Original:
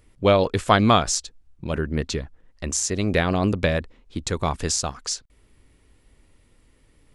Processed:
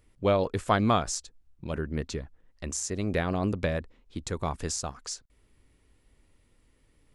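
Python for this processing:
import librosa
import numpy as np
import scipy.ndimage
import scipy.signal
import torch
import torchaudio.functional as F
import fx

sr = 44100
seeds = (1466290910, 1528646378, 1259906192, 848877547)

y = fx.dynamic_eq(x, sr, hz=3500.0, q=0.83, threshold_db=-39.0, ratio=4.0, max_db=-5)
y = y * librosa.db_to_amplitude(-6.5)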